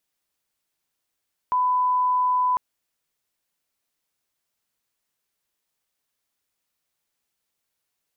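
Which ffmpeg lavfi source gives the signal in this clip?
-f lavfi -i "sine=f=1000:d=1.05:r=44100,volume=0.06dB"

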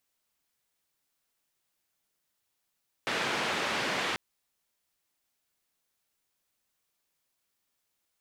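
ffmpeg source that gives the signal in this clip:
-f lavfi -i "anoisesrc=c=white:d=1.09:r=44100:seed=1,highpass=f=160,lowpass=f=2600,volume=-17.1dB"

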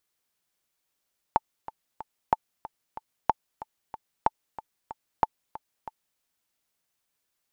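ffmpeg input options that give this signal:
-f lavfi -i "aevalsrc='pow(10,(-6.5-17*gte(mod(t,3*60/186),60/186))/20)*sin(2*PI*879*mod(t,60/186))*exp(-6.91*mod(t,60/186)/0.03)':d=4.83:s=44100"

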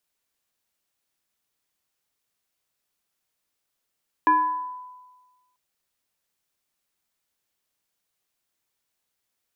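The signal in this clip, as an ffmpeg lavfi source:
-f lavfi -i "aevalsrc='0.224*pow(10,-3*t/1.33)*sin(2*PI*1000*t+0.63*pow(10,-3*t/1)*sin(2*PI*0.69*1000*t))':d=1.29:s=44100"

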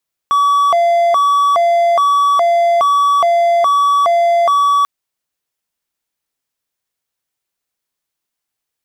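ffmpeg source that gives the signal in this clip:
-f lavfi -i "aevalsrc='0.447*(1-4*abs(mod((913*t+227/1.2*(0.5-abs(mod(1.2*t,1)-0.5)))+0.25,1)-0.5))':d=4.54:s=44100"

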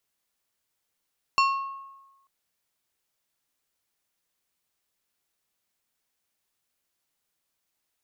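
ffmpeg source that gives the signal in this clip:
-f lavfi -i "aevalsrc='0.141*pow(10,-3*t/1.12)*sin(2*PI*1090*t)+0.0794*pow(10,-3*t/0.59)*sin(2*PI*2725*t)+0.0447*pow(10,-3*t/0.424)*sin(2*PI*4360*t)+0.0251*pow(10,-3*t/0.363)*sin(2*PI*5450*t)+0.0141*pow(10,-3*t/0.302)*sin(2*PI*7085*t)':d=0.89:s=44100"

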